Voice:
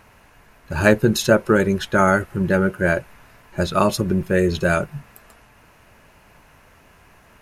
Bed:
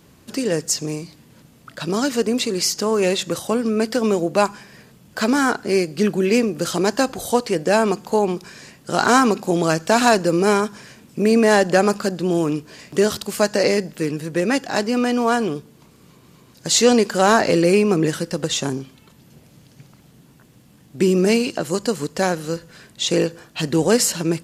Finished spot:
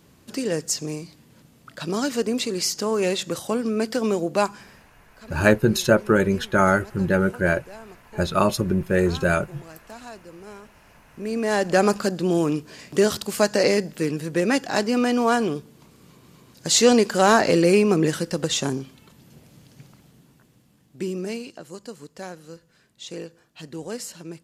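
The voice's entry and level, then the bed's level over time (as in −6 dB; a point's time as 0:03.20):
4.60 s, −2.0 dB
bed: 0:04.69 −4 dB
0:05.05 −25.5 dB
0:10.65 −25.5 dB
0:11.83 −1.5 dB
0:19.86 −1.5 dB
0:21.63 −16.5 dB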